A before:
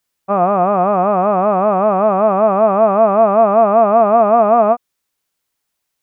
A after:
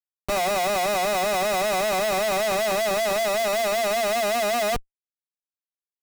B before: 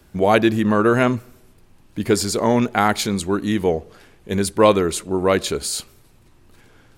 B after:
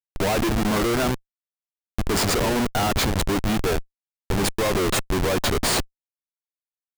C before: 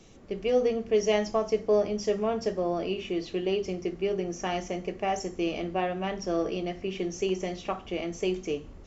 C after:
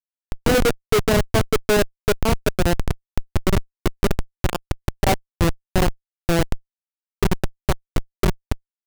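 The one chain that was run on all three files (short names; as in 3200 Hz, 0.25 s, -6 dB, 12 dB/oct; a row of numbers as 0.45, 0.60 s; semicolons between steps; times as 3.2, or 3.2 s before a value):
HPF 420 Hz 6 dB/oct; Schmitt trigger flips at -24.5 dBFS; match loudness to -23 LUFS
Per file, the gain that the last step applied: -8.0, +2.0, +17.0 dB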